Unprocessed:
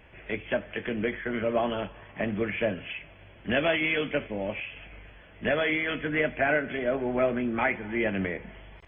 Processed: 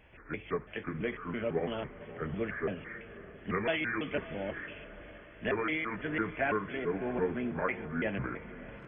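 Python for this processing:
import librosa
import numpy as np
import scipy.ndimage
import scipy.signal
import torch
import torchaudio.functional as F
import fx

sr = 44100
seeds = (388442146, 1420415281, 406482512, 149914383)

y = fx.pitch_trill(x, sr, semitones=-6.0, every_ms=167)
y = fx.echo_diffused(y, sr, ms=607, feedback_pct=44, wet_db=-14.5)
y = y * 10.0 ** (-5.5 / 20.0)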